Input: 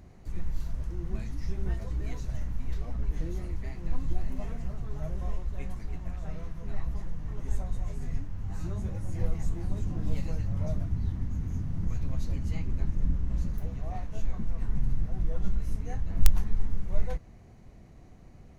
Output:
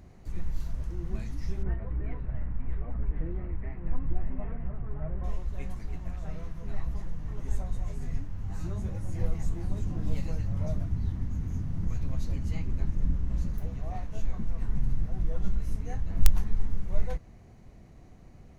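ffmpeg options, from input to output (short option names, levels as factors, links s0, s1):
-filter_complex "[0:a]asettb=1/sr,asplit=3[s0][s1][s2];[s0]atrim=end=1.634[s3];[s1]atrim=start=1.63:end=5.24,asetpts=PTS-STARTPTS,afade=t=in:d=0.004:c=qsin,afade=t=out:st=3.606:d=0.004:c=qsin,lowpass=f=2200:w=0.5412,lowpass=f=2200:w=1.3066[s4];[s2]atrim=start=5.236[s5];[s3][s4]acrossfade=d=0.004:c1=hsin:c2=qsin[s6];[s6][s5]acrossfade=d=0.004:c1=qsin:c2=hsin"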